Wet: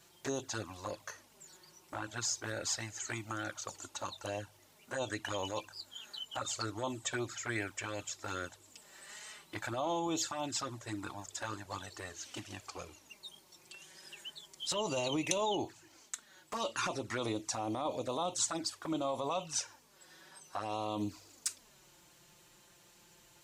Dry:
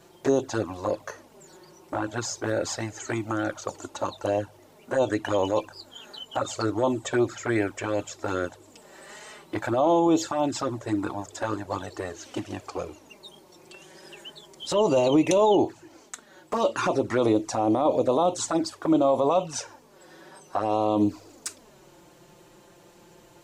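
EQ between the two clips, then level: amplifier tone stack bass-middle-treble 5-5-5; +4.5 dB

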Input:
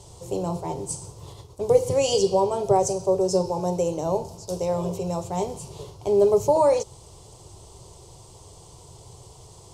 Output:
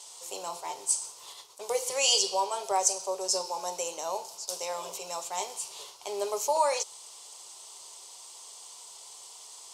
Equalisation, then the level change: high-pass 1.4 kHz 12 dB/octave; +5.5 dB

